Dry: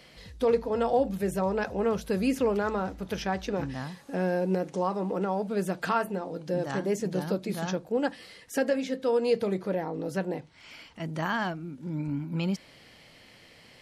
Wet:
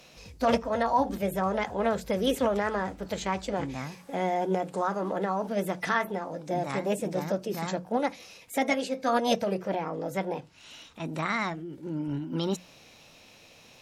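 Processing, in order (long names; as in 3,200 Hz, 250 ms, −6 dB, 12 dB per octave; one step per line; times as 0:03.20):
formants moved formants +4 semitones
mains-hum notches 60/120/180 Hz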